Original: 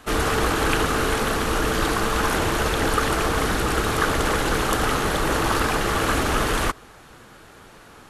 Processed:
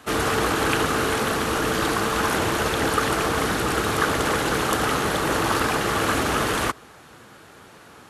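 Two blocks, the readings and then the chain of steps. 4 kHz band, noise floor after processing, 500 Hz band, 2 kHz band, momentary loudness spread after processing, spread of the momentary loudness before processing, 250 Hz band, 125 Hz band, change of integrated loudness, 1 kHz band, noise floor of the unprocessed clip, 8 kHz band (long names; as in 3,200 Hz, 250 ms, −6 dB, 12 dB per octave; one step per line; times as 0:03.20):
0.0 dB, −48 dBFS, 0.0 dB, 0.0 dB, 1 LU, 1 LU, 0.0 dB, −2.5 dB, −0.5 dB, 0.0 dB, −47 dBFS, 0.0 dB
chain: high-pass filter 85 Hz 12 dB per octave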